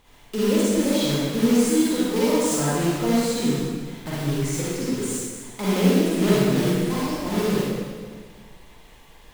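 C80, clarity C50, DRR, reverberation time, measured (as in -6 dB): -2.0 dB, -6.0 dB, -8.5 dB, 1.7 s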